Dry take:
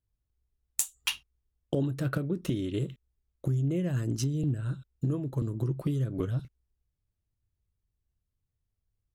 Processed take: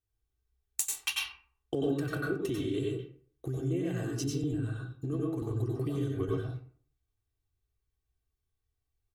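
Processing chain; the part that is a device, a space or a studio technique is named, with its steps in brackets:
microphone above a desk (comb filter 2.6 ms, depth 71%; convolution reverb RT60 0.50 s, pre-delay 89 ms, DRR −2 dB)
low-shelf EQ 70 Hz −9.5 dB
level −4.5 dB

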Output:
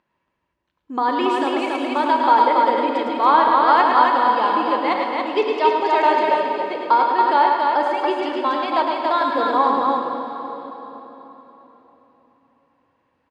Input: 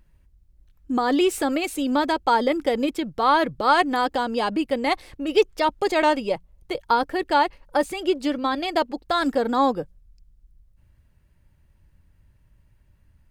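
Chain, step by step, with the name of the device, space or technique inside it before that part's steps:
station announcement (band-pass filter 330–3,700 Hz; parametric band 1,000 Hz +10 dB 0.29 octaves; loudspeakers that aren't time-aligned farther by 37 metres −5 dB, 96 metres −3 dB; convolution reverb RT60 4.0 s, pre-delay 17 ms, DRR 3.5 dB)
level −1.5 dB

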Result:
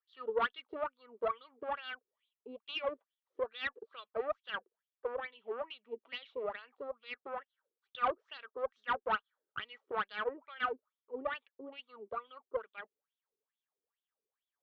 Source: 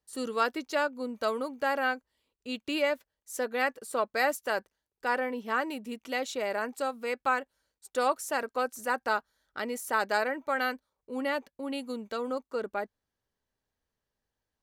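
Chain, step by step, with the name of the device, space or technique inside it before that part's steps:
wah-wah guitar rig (LFO wah 2.3 Hz 360–3,700 Hz, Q 7.4; tube saturation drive 32 dB, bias 0.65; loudspeaker in its box 77–3,700 Hz, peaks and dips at 440 Hz +6 dB, 1,200 Hz +8 dB, 3,300 Hz +7 dB)
level +4.5 dB

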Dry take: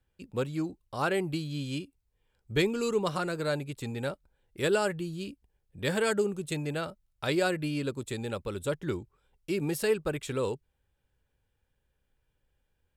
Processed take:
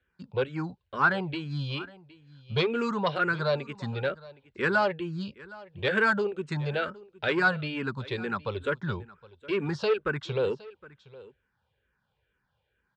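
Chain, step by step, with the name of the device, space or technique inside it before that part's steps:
barber-pole phaser into a guitar amplifier (frequency shifter mixed with the dry sound −2.2 Hz; soft clipping −24 dBFS, distortion −17 dB; loudspeaker in its box 85–4,500 Hz, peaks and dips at 300 Hz −8 dB, 1,000 Hz +5 dB, 1,500 Hz +7 dB)
single-tap delay 765 ms −20.5 dB
level +6.5 dB

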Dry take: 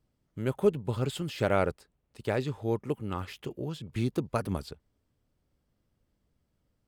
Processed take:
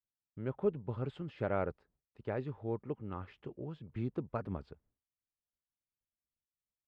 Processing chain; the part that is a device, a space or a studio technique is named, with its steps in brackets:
hearing-loss simulation (low-pass filter 1,800 Hz 12 dB per octave; downward expander −59 dBFS)
level −7.5 dB

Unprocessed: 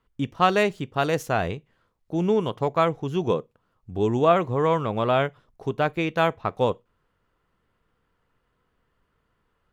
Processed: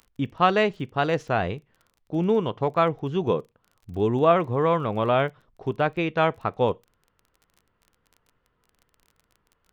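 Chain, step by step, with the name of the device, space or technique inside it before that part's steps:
lo-fi chain (low-pass filter 4,000 Hz 12 dB per octave; tape wow and flutter; surface crackle 23 per second −41 dBFS)

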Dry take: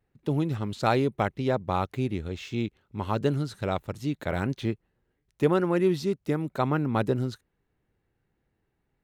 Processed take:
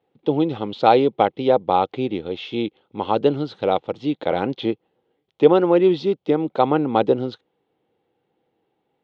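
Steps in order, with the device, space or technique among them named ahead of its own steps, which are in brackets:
kitchen radio (loudspeaker in its box 190–4,300 Hz, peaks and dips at 320 Hz +5 dB, 490 Hz +10 dB, 800 Hz +9 dB, 1,700 Hz −7 dB, 3,300 Hz +9 dB)
level +4 dB

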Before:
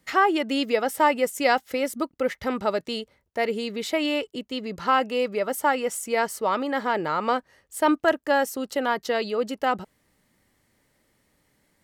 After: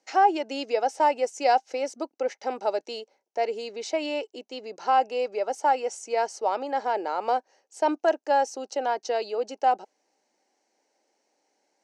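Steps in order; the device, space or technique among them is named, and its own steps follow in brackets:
phone speaker on a table (loudspeaker in its box 330–6,800 Hz, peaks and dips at 780 Hz +9 dB, 1,200 Hz −10 dB, 1,900 Hz −9 dB, 3,400 Hz −9 dB, 6,000 Hz +8 dB)
level −2.5 dB

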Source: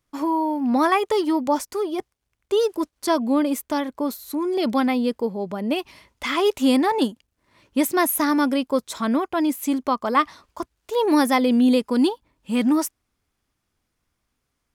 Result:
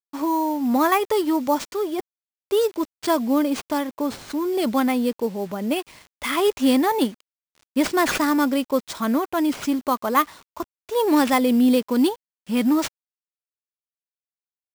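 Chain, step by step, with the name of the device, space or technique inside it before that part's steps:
early 8-bit sampler (sample-rate reduction 13,000 Hz, jitter 0%; bit reduction 8 bits)

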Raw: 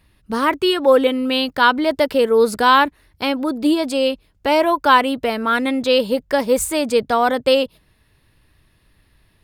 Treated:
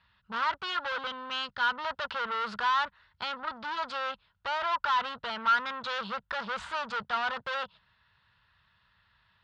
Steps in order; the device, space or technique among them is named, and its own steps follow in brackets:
0:00.96–0:01.72: parametric band 1,000 Hz −9.5 dB 2 octaves
scooped metal amplifier (tube saturation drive 27 dB, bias 0.75; loudspeaker in its box 100–3,700 Hz, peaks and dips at 200 Hz +8 dB, 960 Hz +8 dB, 1,400 Hz +10 dB, 2,300 Hz −7 dB; guitar amp tone stack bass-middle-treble 10-0-10)
level +5 dB

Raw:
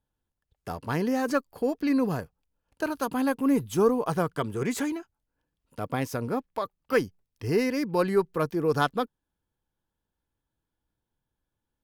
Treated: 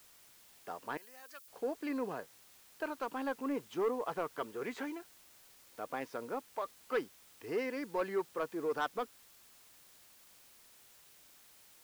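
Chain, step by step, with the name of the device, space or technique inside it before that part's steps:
tape answering machine (band-pass filter 380–3,100 Hz; soft clipping −18.5 dBFS, distortion −17 dB; tape wow and flutter; white noise bed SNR 21 dB)
0:00.97–0:01.48: first difference
level −6.5 dB

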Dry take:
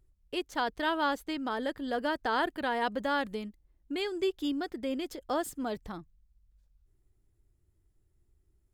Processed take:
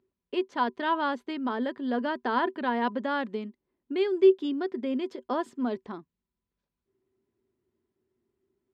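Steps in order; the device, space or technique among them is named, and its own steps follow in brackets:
high-pass filter 220 Hz 12 dB per octave
inside a cardboard box (low-pass filter 3,600 Hz 12 dB per octave; hollow resonant body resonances 240/380/1,000 Hz, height 13 dB, ringing for 95 ms)

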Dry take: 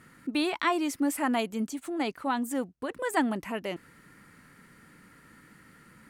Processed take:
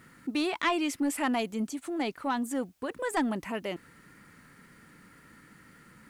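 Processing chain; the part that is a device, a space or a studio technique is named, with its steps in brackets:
compact cassette (soft clipping −20 dBFS, distortion −18 dB; low-pass filter 12,000 Hz 12 dB per octave; tape wow and flutter 16 cents; white noise bed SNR 40 dB)
0:00.62–0:01.33: dynamic equaliser 2,800 Hz, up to +7 dB, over −48 dBFS, Q 1.5

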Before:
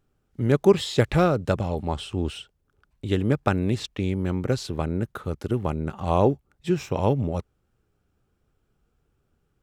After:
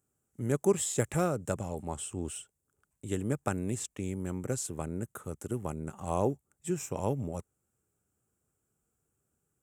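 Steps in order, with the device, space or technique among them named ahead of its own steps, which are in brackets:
budget condenser microphone (high-pass filter 85 Hz; high shelf with overshoot 5,800 Hz +11.5 dB, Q 3)
level −9 dB

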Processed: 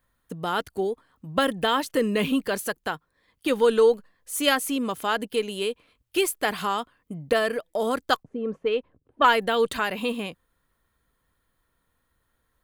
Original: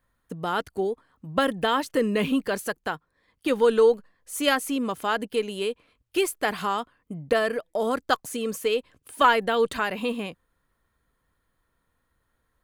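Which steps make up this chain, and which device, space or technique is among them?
0:08.23–0:09.32: low-pass that shuts in the quiet parts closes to 330 Hz, open at −14 dBFS
presence and air boost (parametric band 3,400 Hz +2.5 dB; high-shelf EQ 9,700 Hz +6.5 dB)

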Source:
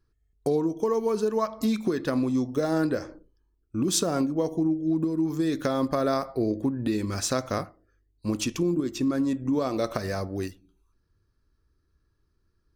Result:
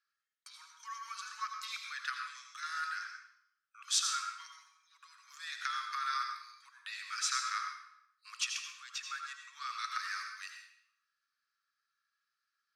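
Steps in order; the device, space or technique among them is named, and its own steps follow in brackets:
bathroom (convolution reverb RT60 0.75 s, pre-delay 76 ms, DRR 3.5 dB)
Butterworth high-pass 1,200 Hz 72 dB per octave
high-frequency loss of the air 67 metres

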